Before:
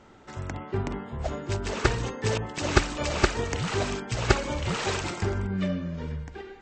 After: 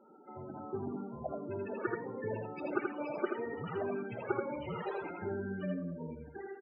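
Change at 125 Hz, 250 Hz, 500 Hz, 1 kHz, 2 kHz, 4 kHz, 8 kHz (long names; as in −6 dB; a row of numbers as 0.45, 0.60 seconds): −16.0 dB, −7.5 dB, −6.5 dB, −9.5 dB, −13.0 dB, −27.0 dB, below −40 dB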